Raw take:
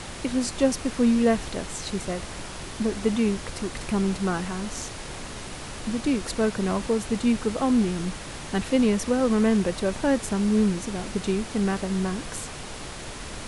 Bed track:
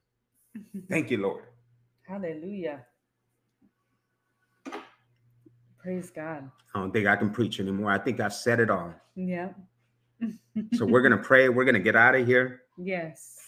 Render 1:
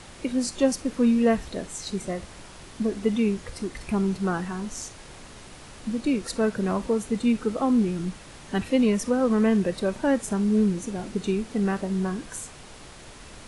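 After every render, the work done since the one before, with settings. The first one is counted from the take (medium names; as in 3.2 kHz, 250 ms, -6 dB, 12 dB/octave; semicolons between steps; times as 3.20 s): noise print and reduce 8 dB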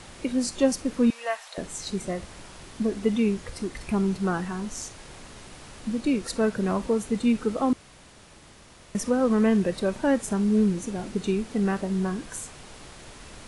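1.10–1.58 s: inverse Chebyshev high-pass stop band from 330 Hz; 7.73–8.95 s: room tone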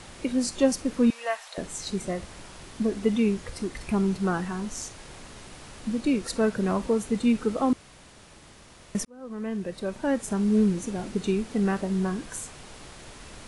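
9.05–10.56 s: fade in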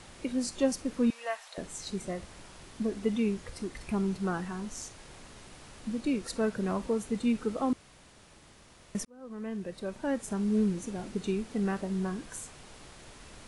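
trim -5.5 dB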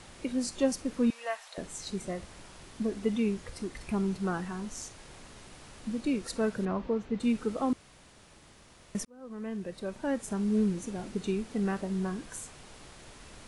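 6.65–7.20 s: distance through air 210 m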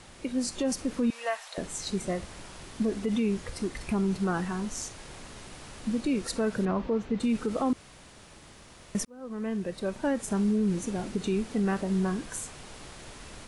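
level rider gain up to 5 dB; peak limiter -19.5 dBFS, peak gain reduction 9.5 dB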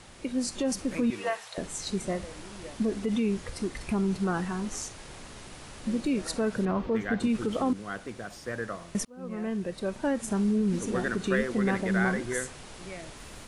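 add bed track -11.5 dB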